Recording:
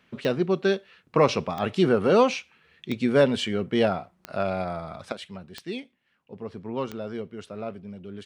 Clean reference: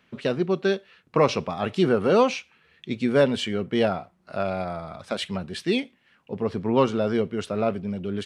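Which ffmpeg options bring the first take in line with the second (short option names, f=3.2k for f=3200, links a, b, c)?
-af "adeclick=t=4,asetnsamples=n=441:p=0,asendcmd='5.12 volume volume 10dB',volume=0dB"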